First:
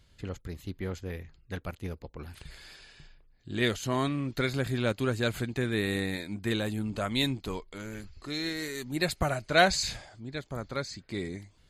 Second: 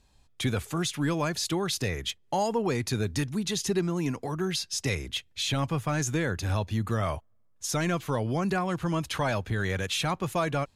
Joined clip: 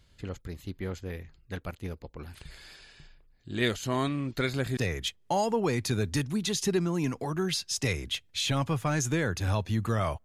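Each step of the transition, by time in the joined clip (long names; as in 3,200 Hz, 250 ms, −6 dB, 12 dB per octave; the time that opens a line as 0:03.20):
first
0:04.77: continue with second from 0:01.79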